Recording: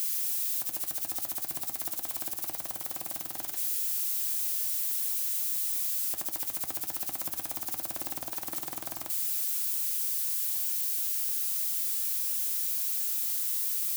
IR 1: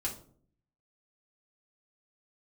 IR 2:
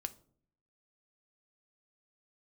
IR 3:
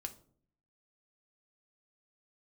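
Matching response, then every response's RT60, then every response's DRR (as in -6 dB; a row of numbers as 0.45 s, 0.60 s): 2; 0.55 s, 0.55 s, 0.55 s; -4.5 dB, 9.0 dB, 5.0 dB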